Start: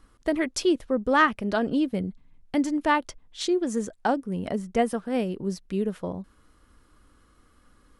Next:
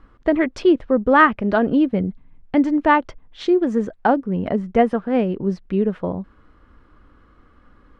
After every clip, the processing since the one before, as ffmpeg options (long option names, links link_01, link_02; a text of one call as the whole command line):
ffmpeg -i in.wav -af "lowpass=2200,volume=7.5dB" out.wav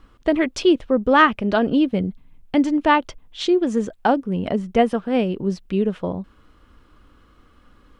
ffmpeg -i in.wav -af "aexciter=amount=3.3:drive=3.4:freq=2600,volume=-1dB" out.wav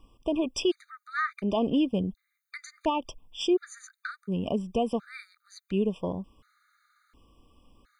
ffmpeg -i in.wav -af "highshelf=frequency=3600:gain=7.5,alimiter=limit=-10.5dB:level=0:latency=1:release=106,afftfilt=real='re*gt(sin(2*PI*0.7*pts/sr)*(1-2*mod(floor(b*sr/1024/1200),2)),0)':imag='im*gt(sin(2*PI*0.7*pts/sr)*(1-2*mod(floor(b*sr/1024/1200),2)),0)':win_size=1024:overlap=0.75,volume=-6dB" out.wav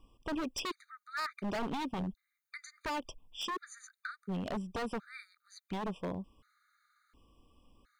ffmpeg -i in.wav -af "aeval=exprs='0.0562*(abs(mod(val(0)/0.0562+3,4)-2)-1)':channel_layout=same,volume=-5dB" out.wav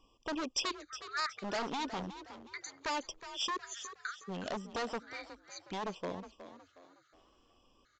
ffmpeg -i in.wav -filter_complex "[0:a]bass=frequency=250:gain=-10,treble=frequency=4000:gain=7,asplit=5[link_01][link_02][link_03][link_04][link_05];[link_02]adelay=365,afreqshift=45,volume=-12.5dB[link_06];[link_03]adelay=730,afreqshift=90,volume=-20.7dB[link_07];[link_04]adelay=1095,afreqshift=135,volume=-28.9dB[link_08];[link_05]adelay=1460,afreqshift=180,volume=-37dB[link_09];[link_01][link_06][link_07][link_08][link_09]amix=inputs=5:normalize=0,aresample=16000,aresample=44100,volume=1dB" out.wav